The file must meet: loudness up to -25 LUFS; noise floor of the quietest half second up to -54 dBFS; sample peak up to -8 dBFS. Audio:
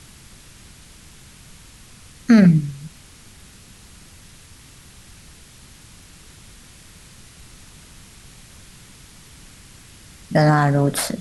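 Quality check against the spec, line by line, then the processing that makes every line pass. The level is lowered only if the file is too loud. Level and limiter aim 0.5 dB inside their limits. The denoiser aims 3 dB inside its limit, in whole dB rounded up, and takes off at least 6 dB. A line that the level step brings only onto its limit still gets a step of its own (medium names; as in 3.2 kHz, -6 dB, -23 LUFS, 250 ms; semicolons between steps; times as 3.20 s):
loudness -16.5 LUFS: fail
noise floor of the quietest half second -45 dBFS: fail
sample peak -5.0 dBFS: fail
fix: noise reduction 6 dB, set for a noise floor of -45 dBFS; trim -9 dB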